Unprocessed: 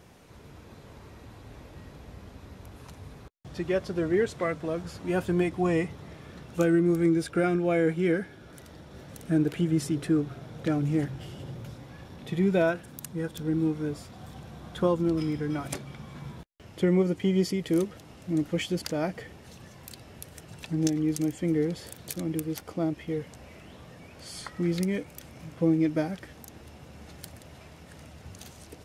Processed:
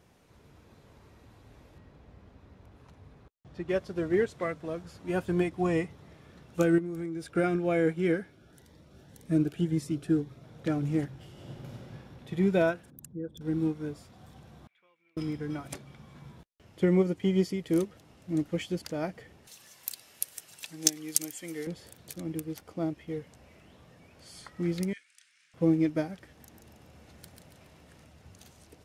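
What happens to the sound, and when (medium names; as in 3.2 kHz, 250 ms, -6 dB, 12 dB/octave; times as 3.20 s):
1.78–3.69 s: low-pass 2.7 kHz 6 dB/octave
6.78–7.25 s: compression 16:1, threshold -26 dBFS
8.30–10.44 s: Shepard-style phaser rising 1.9 Hz
11.31–11.94 s: reverb throw, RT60 2.3 s, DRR -4 dB
12.90–13.41 s: resonances exaggerated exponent 2
14.67–15.17 s: band-pass filter 2.3 kHz, Q 15
19.47–21.67 s: tilt EQ +4.5 dB/octave
24.93–25.54 s: elliptic band-pass 1.6–9.4 kHz
26.26–28.04 s: feedback delay 140 ms, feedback 44%, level -5 dB
whole clip: upward expansion 1.5:1, over -36 dBFS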